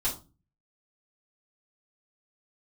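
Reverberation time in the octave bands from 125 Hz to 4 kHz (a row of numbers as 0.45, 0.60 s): 0.65, 0.50, 0.35, 0.30, 0.20, 0.25 s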